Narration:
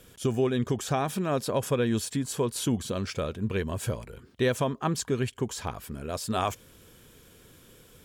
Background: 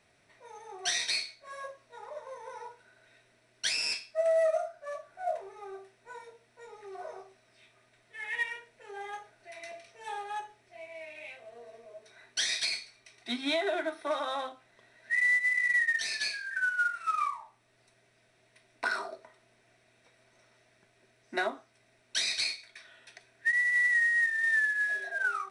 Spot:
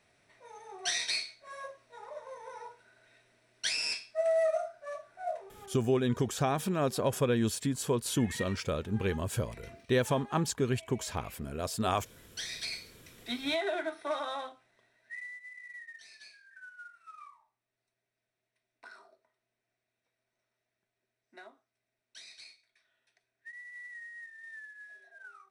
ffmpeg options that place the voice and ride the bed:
-filter_complex "[0:a]adelay=5500,volume=-2dB[a];[1:a]volume=5.5dB,afade=t=out:st=5.1:d=0.7:silence=0.421697,afade=t=in:st=12.54:d=0.43:silence=0.446684,afade=t=out:st=14.18:d=1.13:silence=0.11885[b];[a][b]amix=inputs=2:normalize=0"

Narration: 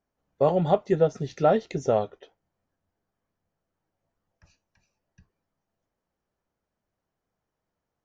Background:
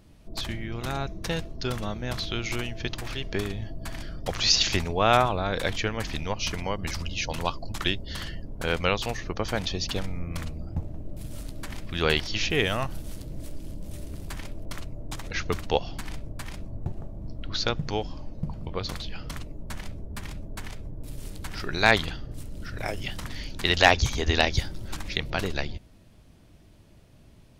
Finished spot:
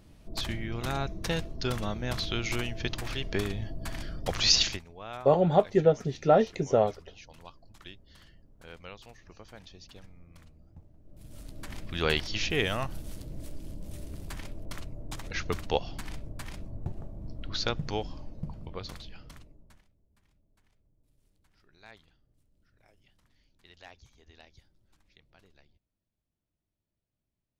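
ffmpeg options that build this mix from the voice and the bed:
-filter_complex "[0:a]adelay=4850,volume=-0.5dB[a];[1:a]volume=16.5dB,afade=t=out:st=4.59:d=0.21:silence=0.1,afade=t=in:st=11.02:d=0.79:silence=0.133352,afade=t=out:st=18.03:d=1.84:silence=0.0334965[b];[a][b]amix=inputs=2:normalize=0"

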